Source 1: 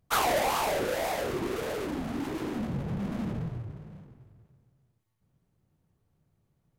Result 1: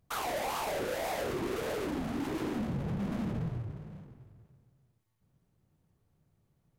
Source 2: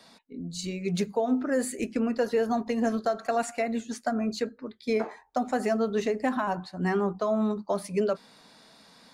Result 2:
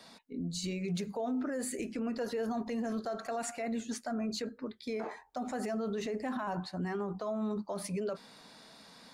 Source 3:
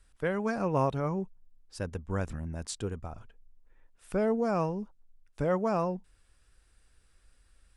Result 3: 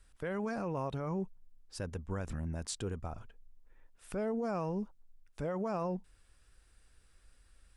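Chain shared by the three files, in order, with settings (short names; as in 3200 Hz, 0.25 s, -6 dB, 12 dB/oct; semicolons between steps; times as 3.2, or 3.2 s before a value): limiter -28 dBFS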